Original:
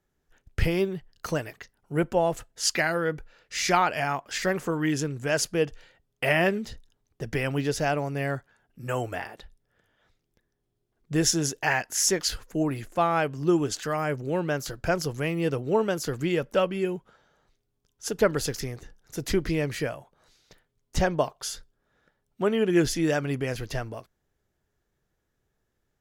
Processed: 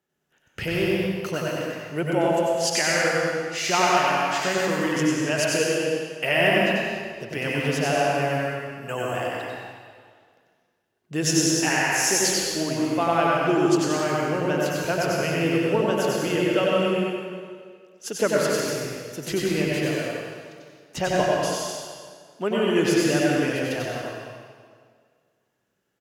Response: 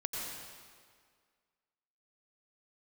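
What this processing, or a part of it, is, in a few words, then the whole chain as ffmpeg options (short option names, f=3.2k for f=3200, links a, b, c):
PA in a hall: -filter_complex "[0:a]highpass=160,equalizer=f=2.8k:t=o:w=0.25:g=7,aecho=1:1:95:0.631[a];[1:a]atrim=start_sample=2205[b];[a][b]afir=irnorm=-1:irlink=0"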